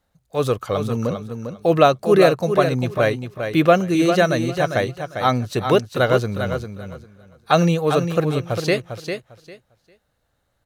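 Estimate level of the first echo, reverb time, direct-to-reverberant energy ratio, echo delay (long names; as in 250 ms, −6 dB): −7.5 dB, no reverb audible, no reverb audible, 400 ms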